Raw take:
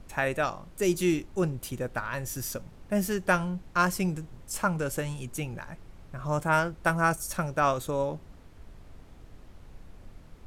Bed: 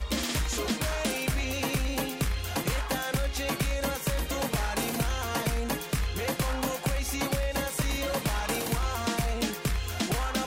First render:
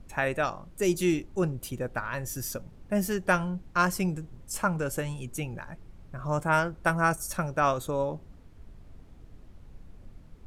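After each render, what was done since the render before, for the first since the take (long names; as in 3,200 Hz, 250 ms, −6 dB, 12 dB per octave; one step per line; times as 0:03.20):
broadband denoise 6 dB, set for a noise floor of −51 dBFS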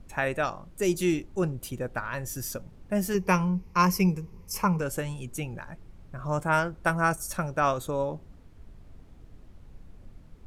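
0:03.14–0:04.81: EQ curve with evenly spaced ripples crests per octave 0.82, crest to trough 12 dB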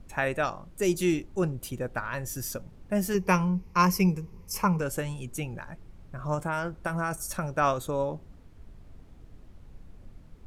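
0:06.34–0:07.55: downward compressor 10 to 1, threshold −24 dBFS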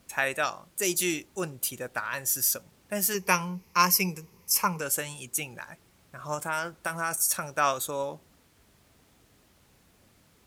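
high-pass filter 50 Hz
spectral tilt +3.5 dB per octave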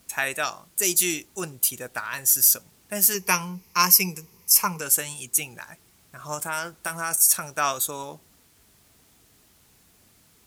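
high-shelf EQ 4,400 Hz +9.5 dB
notch filter 550 Hz, Q 12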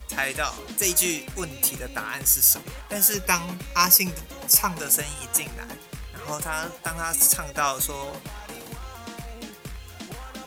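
mix in bed −9 dB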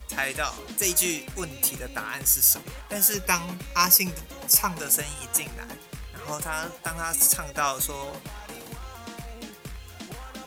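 level −1.5 dB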